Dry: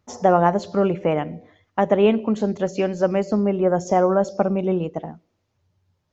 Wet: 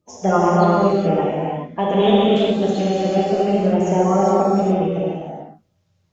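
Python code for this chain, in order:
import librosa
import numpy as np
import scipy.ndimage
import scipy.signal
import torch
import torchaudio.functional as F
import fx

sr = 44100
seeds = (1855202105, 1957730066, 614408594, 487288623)

y = fx.spec_quant(x, sr, step_db=30)
y = fx.peak_eq(y, sr, hz=3600.0, db=14.0, octaves=0.52, at=(1.79, 3.58))
y = fx.rev_gated(y, sr, seeds[0], gate_ms=460, shape='flat', drr_db=-6.5)
y = y * 10.0 ** (-3.5 / 20.0)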